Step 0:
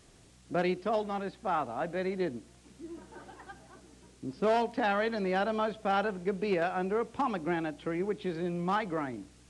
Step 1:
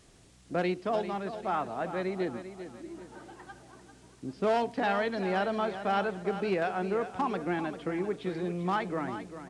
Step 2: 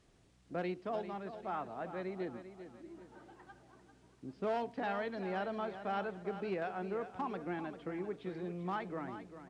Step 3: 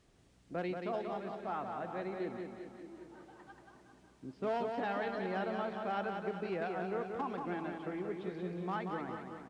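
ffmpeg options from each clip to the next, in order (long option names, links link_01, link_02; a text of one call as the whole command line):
ffmpeg -i in.wav -af "aecho=1:1:395|790|1185|1580:0.282|0.107|0.0407|0.0155" out.wav
ffmpeg -i in.wav -af "aemphasis=mode=reproduction:type=cd,volume=-8.5dB" out.wav
ffmpeg -i in.wav -af "aecho=1:1:182|364|546|728|910:0.562|0.225|0.09|0.036|0.0144" out.wav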